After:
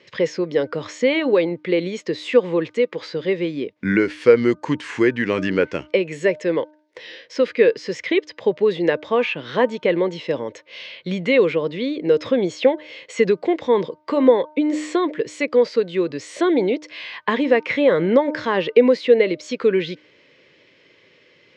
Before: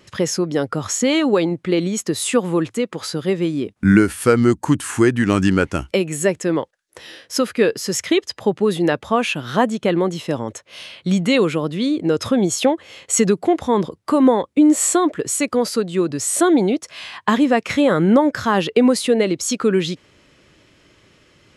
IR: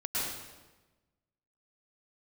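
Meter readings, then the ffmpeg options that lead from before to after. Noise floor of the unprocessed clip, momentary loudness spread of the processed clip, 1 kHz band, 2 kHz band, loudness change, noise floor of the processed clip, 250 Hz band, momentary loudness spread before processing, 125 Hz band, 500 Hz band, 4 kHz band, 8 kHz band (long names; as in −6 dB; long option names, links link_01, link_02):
−59 dBFS, 10 LU, −5.0 dB, 0.0 dB, −1.5 dB, −55 dBFS, −5.0 dB, 8 LU, −8.5 dB, +2.0 dB, −4.5 dB, below −15 dB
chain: -filter_complex "[0:a]highpass=210,equalizer=frequency=210:width_type=q:width=4:gain=-6,equalizer=frequency=310:width_type=q:width=4:gain=-4,equalizer=frequency=490:width_type=q:width=4:gain=6,equalizer=frequency=750:width_type=q:width=4:gain=-8,equalizer=frequency=1300:width_type=q:width=4:gain=-9,equalizer=frequency=2100:width_type=q:width=4:gain=6,lowpass=frequency=4900:width=0.5412,lowpass=frequency=4900:width=1.3066,acrossover=split=2800[link_01][link_02];[link_02]acompressor=threshold=-36dB:ratio=4:attack=1:release=60[link_03];[link_01][link_03]amix=inputs=2:normalize=0,bandreject=frequency=304.7:width_type=h:width=4,bandreject=frequency=609.4:width_type=h:width=4,bandreject=frequency=914.1:width_type=h:width=4,bandreject=frequency=1218.8:width_type=h:width=4,bandreject=frequency=1523.5:width_type=h:width=4"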